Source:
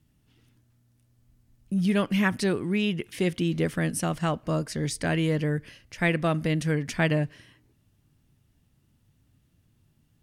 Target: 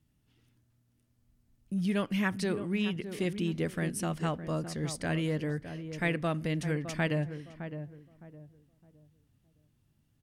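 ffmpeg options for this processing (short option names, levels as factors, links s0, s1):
-filter_complex "[0:a]asplit=2[s0][s1];[s1]adelay=612,lowpass=f=970:p=1,volume=0.355,asplit=2[s2][s3];[s3]adelay=612,lowpass=f=970:p=1,volume=0.31,asplit=2[s4][s5];[s5]adelay=612,lowpass=f=970:p=1,volume=0.31,asplit=2[s6][s7];[s7]adelay=612,lowpass=f=970:p=1,volume=0.31[s8];[s0][s2][s4][s6][s8]amix=inputs=5:normalize=0,volume=0.501"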